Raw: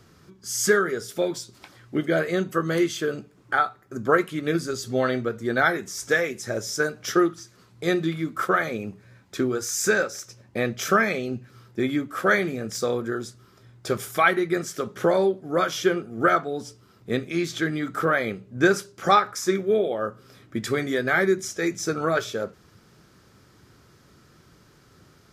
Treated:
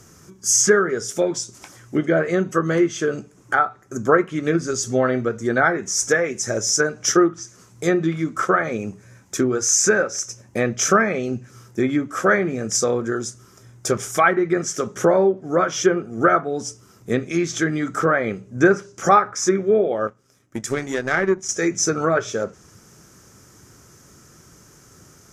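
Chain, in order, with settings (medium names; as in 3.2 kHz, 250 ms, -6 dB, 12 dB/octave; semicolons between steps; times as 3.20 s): 20.07–21.49 s: power-law waveshaper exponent 1.4; low-pass that closes with the level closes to 1.9 kHz, closed at -18 dBFS; resonant high shelf 5.1 kHz +6.5 dB, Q 3; trim +4.5 dB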